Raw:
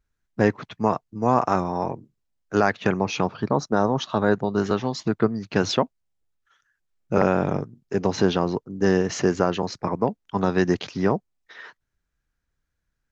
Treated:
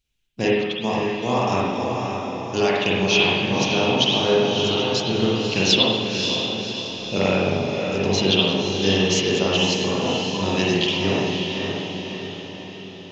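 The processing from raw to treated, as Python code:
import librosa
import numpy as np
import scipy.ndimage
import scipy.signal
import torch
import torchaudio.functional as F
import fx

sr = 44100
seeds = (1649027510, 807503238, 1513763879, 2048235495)

y = fx.high_shelf_res(x, sr, hz=2100.0, db=11.0, q=3.0)
y = fx.echo_diffused(y, sr, ms=562, feedback_pct=53, wet_db=-5.0)
y = fx.rev_spring(y, sr, rt60_s=1.1, pass_ms=(41, 53), chirp_ms=75, drr_db=-5.0)
y = F.gain(torch.from_numpy(y), -5.5).numpy()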